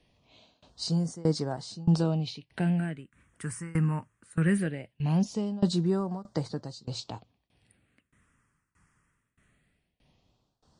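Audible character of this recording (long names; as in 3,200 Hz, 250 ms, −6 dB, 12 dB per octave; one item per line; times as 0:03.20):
tremolo saw down 1.6 Hz, depth 95%
phaser sweep stages 4, 0.2 Hz, lowest notch 650–2,500 Hz
MP3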